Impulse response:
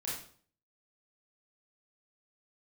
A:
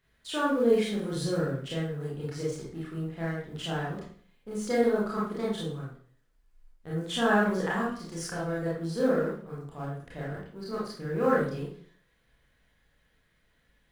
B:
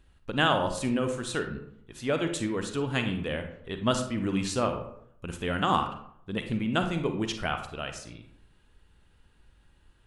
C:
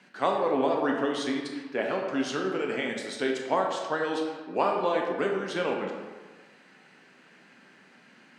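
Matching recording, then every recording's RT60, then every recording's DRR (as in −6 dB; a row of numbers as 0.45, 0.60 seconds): A; 0.50, 0.70, 1.5 seconds; −6.5, 6.0, 0.5 decibels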